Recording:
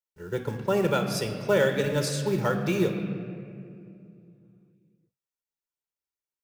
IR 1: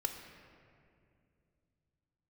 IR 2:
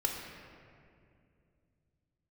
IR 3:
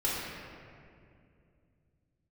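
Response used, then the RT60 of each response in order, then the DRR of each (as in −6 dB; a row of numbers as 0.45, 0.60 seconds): 1; 2.4, 2.4, 2.4 seconds; 5.0, 0.5, −7.0 decibels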